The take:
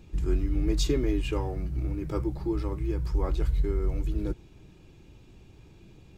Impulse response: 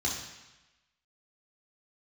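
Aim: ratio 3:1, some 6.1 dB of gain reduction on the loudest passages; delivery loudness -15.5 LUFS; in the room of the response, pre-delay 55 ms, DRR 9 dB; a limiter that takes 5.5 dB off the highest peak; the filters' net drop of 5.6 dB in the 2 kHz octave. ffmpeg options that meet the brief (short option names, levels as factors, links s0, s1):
-filter_complex "[0:a]equalizer=f=2000:t=o:g=-7.5,acompressor=threshold=0.0355:ratio=3,alimiter=level_in=1.26:limit=0.0631:level=0:latency=1,volume=0.794,asplit=2[s0][s1];[1:a]atrim=start_sample=2205,adelay=55[s2];[s1][s2]afir=irnorm=-1:irlink=0,volume=0.168[s3];[s0][s3]amix=inputs=2:normalize=0,volume=8.91"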